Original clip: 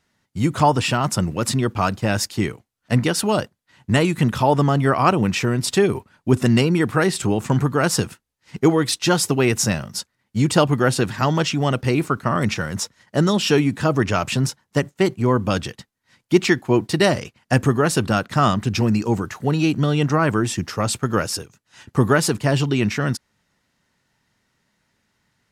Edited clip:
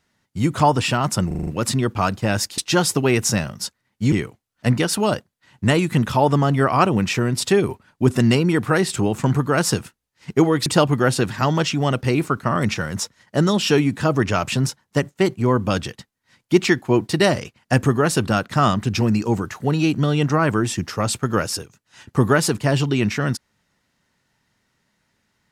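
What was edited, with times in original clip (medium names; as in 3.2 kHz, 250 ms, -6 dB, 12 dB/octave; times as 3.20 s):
1.27 s: stutter 0.04 s, 6 plays
8.92–10.46 s: move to 2.38 s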